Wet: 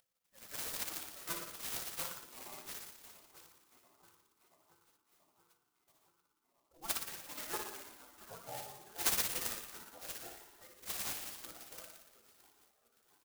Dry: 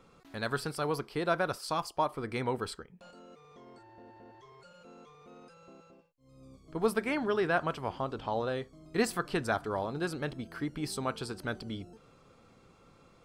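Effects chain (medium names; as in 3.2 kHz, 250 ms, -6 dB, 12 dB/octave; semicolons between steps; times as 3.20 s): expander on every frequency bin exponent 3; spectral noise reduction 6 dB; on a send: tape echo 681 ms, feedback 57%, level -18.5 dB, low-pass 1.6 kHz; on the sum: resampled via 22.05 kHz; flutter echo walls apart 10 m, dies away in 0.82 s; in parallel at -1.5 dB: upward compressor, threshold -37 dBFS; on the sum: comb 1.5 ms, depth 66%; 2.27–2.92 s: transient shaper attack -8 dB, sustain +5 dB; feedback comb 170 Hz, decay 0.33 s, harmonics all, mix 70%; spectral gate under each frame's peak -20 dB weak; tone controls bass -8 dB, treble +14 dB; sampling jitter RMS 0.11 ms; trim +8 dB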